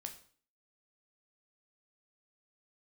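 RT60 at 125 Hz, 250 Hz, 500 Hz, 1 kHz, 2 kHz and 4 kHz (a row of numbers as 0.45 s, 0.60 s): 0.50 s, 0.55 s, 0.50 s, 0.45 s, 0.45 s, 0.45 s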